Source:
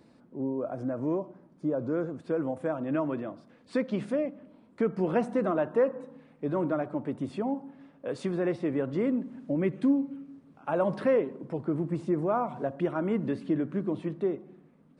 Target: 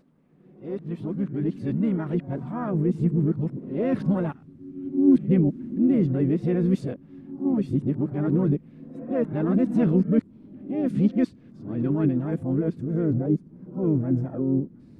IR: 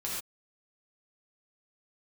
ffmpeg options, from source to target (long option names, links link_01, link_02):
-filter_complex "[0:a]areverse,asubboost=boost=11.5:cutoff=200,asplit=2[link_01][link_02];[link_02]asetrate=58866,aresample=44100,atempo=0.749154,volume=-10dB[link_03];[link_01][link_03]amix=inputs=2:normalize=0,volume=-3dB"